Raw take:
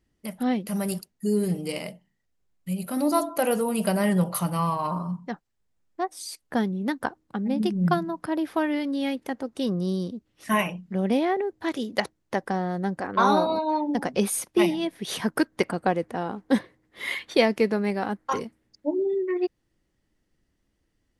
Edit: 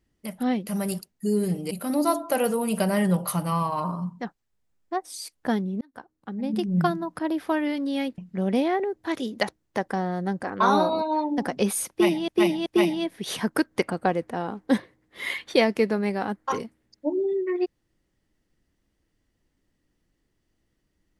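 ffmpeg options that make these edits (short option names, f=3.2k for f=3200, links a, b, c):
-filter_complex "[0:a]asplit=6[a][b][c][d][e][f];[a]atrim=end=1.712[g];[b]atrim=start=2.778:end=6.88,asetpts=PTS-STARTPTS,afade=t=out:st=4.098:d=0.004:c=hsin[h];[c]atrim=start=6.88:end=9.252,asetpts=PTS-STARTPTS,afade=t=in:d=0.91[i];[d]atrim=start=10.748:end=14.852[j];[e]atrim=start=14.468:end=14.852[k];[f]atrim=start=14.468[l];[h][i]concat=n=2:v=0:a=1[m];[g][m]acrossfade=d=0.004:c1=hsin:c2=hsin[n];[n][j]acrossfade=d=0.004:c1=hsin:c2=hsin[o];[o][k]acrossfade=d=0.004:c1=hsin:c2=hsin[p];[p][l]acrossfade=d=0.004:c1=hsin:c2=hsin"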